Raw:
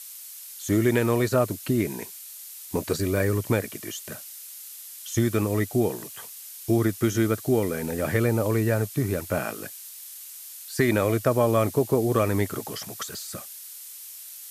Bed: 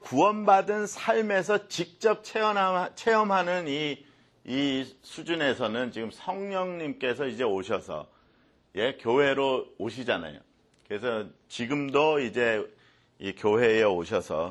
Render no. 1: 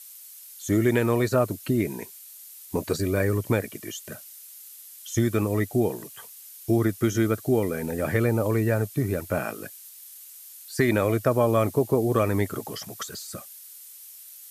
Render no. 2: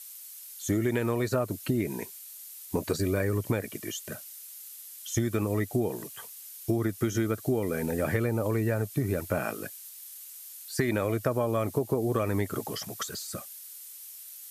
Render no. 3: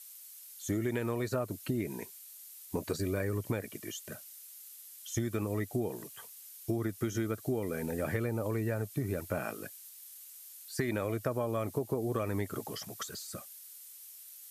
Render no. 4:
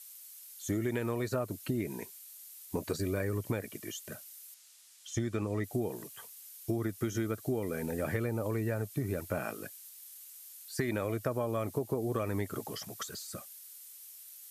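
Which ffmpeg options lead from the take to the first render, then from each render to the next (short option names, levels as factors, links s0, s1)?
-af "afftdn=nr=6:nf=-42"
-af "acompressor=threshold=0.0708:ratio=6"
-af "volume=0.531"
-filter_complex "[0:a]asettb=1/sr,asplit=3[s0][s1][s2];[s0]atrim=end=4.544[s3];[s1]atrim=start=4.54:end=5.64,asetpts=PTS-STARTPTS,afade=t=in:d=0.004:c=qsin,afade=t=out:st=1.096:d=0.004:c=qsin,lowpass=7400[s4];[s2]atrim=start=5.636[s5];[s3][s4]acrossfade=d=0.004:c1=hsin:c2=qsin[s6];[s6][s5]acrossfade=d=0.004:c1=qsin:c2=hsin"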